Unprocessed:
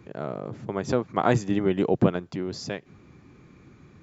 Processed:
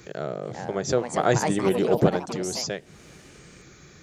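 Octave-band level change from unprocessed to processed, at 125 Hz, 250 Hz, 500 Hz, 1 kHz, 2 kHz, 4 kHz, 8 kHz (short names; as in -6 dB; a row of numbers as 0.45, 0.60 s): 0.0 dB, -1.0 dB, +3.0 dB, +2.0 dB, +3.0 dB, +6.5 dB, n/a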